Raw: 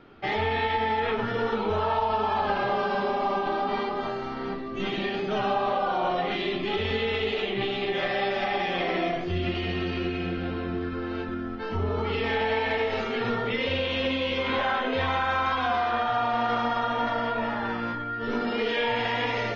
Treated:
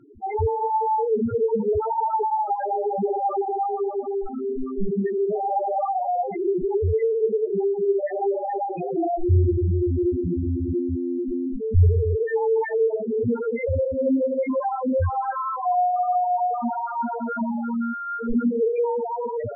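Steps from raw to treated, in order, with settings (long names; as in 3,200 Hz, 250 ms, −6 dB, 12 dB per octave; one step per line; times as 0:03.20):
spectral peaks only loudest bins 2
spectral tilt −3 dB per octave
level +6 dB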